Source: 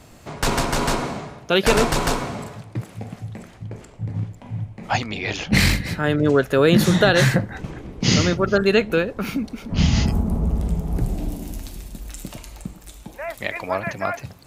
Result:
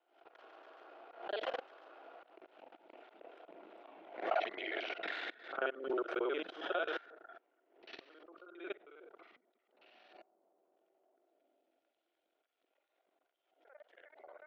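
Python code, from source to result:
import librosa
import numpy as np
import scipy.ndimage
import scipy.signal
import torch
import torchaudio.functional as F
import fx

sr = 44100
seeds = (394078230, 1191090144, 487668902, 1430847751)

y = fx.local_reverse(x, sr, ms=40.0)
y = fx.doppler_pass(y, sr, speed_mps=44, closest_m=4.8, pass_at_s=4.09)
y = scipy.signal.sosfilt(scipy.signal.ellip(4, 1.0, 60, 340.0, 'highpass', fs=sr, output='sos'), y)
y = fx.peak_eq(y, sr, hz=3200.0, db=12.5, octaves=1.2)
y = fx.level_steps(y, sr, step_db=22)
y = fx.spacing_loss(y, sr, db_at_10k=42)
y = fx.small_body(y, sr, hz=(680.0, 1400.0), ring_ms=20, db=10)
y = fx.pre_swell(y, sr, db_per_s=110.0)
y = F.gain(torch.from_numpy(y), 10.5).numpy()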